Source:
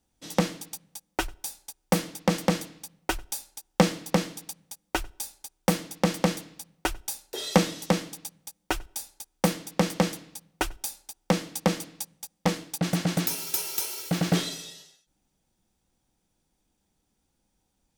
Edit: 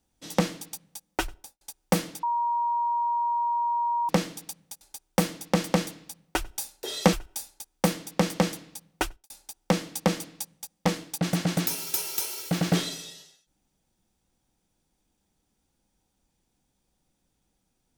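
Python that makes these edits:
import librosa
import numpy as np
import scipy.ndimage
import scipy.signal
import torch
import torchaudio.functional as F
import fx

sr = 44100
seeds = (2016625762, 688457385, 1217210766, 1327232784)

y = fx.studio_fade_out(x, sr, start_s=1.3, length_s=0.31)
y = fx.edit(y, sr, fx.bleep(start_s=2.23, length_s=1.86, hz=947.0, db=-23.0),
    fx.cut(start_s=4.81, length_s=0.5),
    fx.cut(start_s=7.63, length_s=1.1),
    fx.fade_out_span(start_s=10.64, length_s=0.26, curve='qua'), tone=tone)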